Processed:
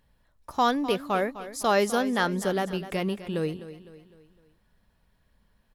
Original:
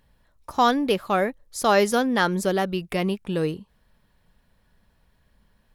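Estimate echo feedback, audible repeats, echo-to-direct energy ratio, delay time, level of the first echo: 45%, 4, -13.0 dB, 0.254 s, -14.0 dB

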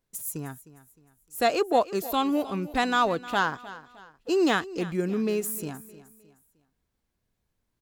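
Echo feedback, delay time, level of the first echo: 38%, 0.308 s, -17.0 dB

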